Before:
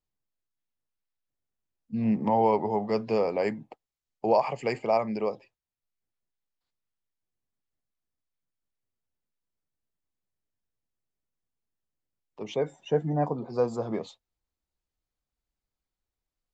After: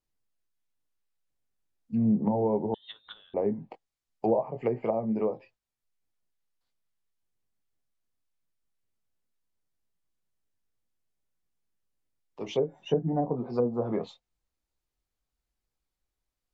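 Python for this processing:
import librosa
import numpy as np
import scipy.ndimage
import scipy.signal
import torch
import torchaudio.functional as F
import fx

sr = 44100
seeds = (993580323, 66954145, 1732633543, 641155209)

y = fx.chorus_voices(x, sr, voices=6, hz=0.18, base_ms=21, depth_ms=3.9, mix_pct=30)
y = fx.freq_invert(y, sr, carrier_hz=3900, at=(2.74, 3.34))
y = fx.env_lowpass_down(y, sr, base_hz=450.0, full_db=-25.0)
y = y * librosa.db_to_amplitude(4.0)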